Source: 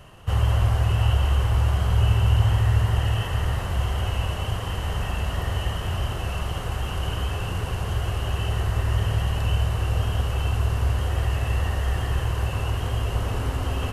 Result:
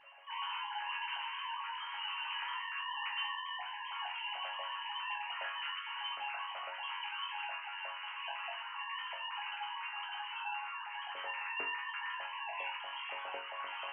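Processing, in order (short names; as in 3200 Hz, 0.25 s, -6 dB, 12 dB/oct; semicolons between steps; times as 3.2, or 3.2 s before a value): sine-wave speech; 1.85–2.3 band noise 1500–2800 Hz -47 dBFS; resonator bank F#2 fifth, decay 0.35 s; gain -7 dB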